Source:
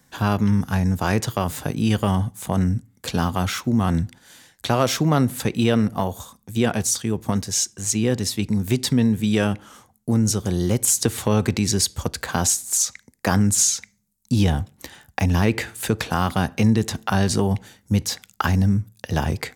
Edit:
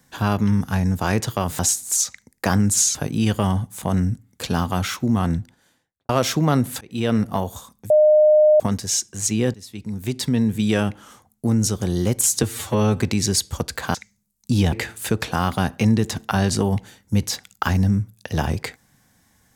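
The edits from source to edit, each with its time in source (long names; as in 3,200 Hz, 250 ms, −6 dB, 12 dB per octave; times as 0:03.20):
0:03.75–0:04.73: fade out and dull
0:05.45–0:05.80: fade in
0:06.54–0:07.24: beep over 610 Hz −10 dBFS
0:08.18–0:09.18: fade in, from −21.5 dB
0:11.07–0:11.44: time-stretch 1.5×
0:12.40–0:13.76: move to 0:01.59
0:14.54–0:15.51: remove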